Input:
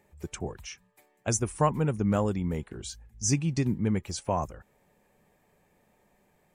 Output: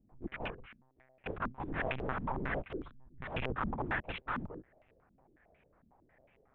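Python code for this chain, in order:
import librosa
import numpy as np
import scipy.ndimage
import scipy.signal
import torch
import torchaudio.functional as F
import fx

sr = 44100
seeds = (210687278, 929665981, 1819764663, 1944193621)

y = (np.mod(10.0 ** (28.5 / 20.0) * x + 1.0, 2.0) - 1.0) / 10.0 ** (28.5 / 20.0)
y = fx.lpc_monotone(y, sr, seeds[0], pitch_hz=130.0, order=8)
y = fx.filter_held_lowpass(y, sr, hz=11.0, low_hz=230.0, high_hz=2600.0)
y = y * 10.0 ** (-3.5 / 20.0)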